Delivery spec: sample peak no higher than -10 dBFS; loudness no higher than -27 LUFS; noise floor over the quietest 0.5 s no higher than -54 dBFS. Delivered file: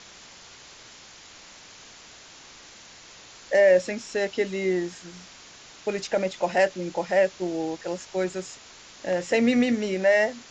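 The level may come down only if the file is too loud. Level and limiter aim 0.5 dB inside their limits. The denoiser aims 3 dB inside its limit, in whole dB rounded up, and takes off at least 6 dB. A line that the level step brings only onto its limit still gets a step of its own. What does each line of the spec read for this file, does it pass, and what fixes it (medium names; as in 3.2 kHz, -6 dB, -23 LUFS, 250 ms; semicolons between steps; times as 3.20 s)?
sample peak -9.0 dBFS: fail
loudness -25.0 LUFS: fail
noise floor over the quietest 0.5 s -48 dBFS: fail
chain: noise reduction 7 dB, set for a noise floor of -48 dBFS; trim -2.5 dB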